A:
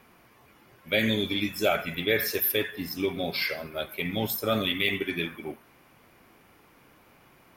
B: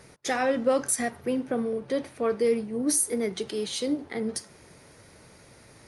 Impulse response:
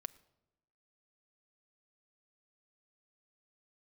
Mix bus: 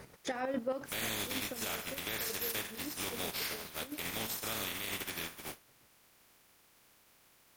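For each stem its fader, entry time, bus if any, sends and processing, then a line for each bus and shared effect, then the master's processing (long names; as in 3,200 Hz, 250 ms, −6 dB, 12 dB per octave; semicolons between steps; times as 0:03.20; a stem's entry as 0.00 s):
−7.5 dB, 0.00 s, no send, compressing power law on the bin magnitudes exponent 0.28
+2.0 dB, 0.00 s, no send, high-shelf EQ 4,100 Hz −8 dB; square-wave tremolo 7.4 Hz, depth 65%, duty 35%; automatic ducking −18 dB, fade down 1.75 s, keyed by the first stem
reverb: not used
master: brickwall limiter −25.5 dBFS, peak gain reduction 10.5 dB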